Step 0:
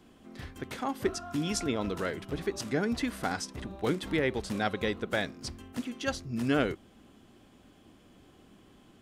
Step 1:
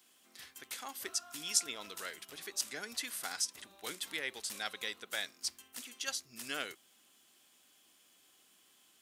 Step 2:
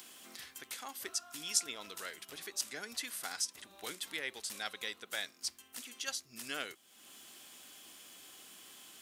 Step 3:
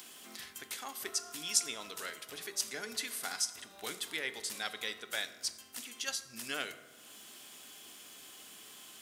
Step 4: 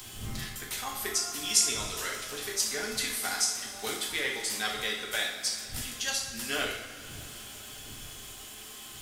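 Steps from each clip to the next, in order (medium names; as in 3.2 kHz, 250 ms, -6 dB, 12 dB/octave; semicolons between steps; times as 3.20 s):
differentiator; trim +6 dB
upward compressor, threshold -41 dBFS; trim -1 dB
reverberation RT60 1.3 s, pre-delay 4 ms, DRR 9.5 dB; trim +2 dB
wind noise 110 Hz -56 dBFS; two-slope reverb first 0.6 s, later 4.6 s, from -17 dB, DRR -2 dB; trim +3 dB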